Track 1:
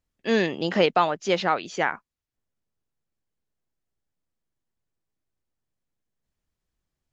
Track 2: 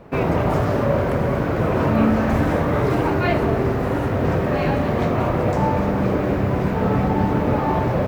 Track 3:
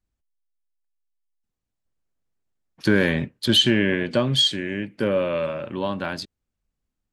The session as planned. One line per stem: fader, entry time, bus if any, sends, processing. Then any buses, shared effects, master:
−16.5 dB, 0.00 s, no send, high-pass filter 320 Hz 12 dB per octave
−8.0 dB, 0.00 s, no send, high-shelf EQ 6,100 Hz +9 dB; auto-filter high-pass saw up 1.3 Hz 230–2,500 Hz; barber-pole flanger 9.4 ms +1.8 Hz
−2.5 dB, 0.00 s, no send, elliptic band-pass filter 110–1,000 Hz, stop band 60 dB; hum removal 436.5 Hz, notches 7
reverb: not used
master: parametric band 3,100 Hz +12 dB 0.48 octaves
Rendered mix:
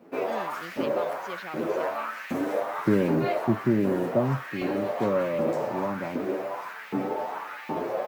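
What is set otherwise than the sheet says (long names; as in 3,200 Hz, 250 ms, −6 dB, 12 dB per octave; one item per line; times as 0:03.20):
stem 1: missing high-pass filter 320 Hz 12 dB per octave
master: missing parametric band 3,100 Hz +12 dB 0.48 octaves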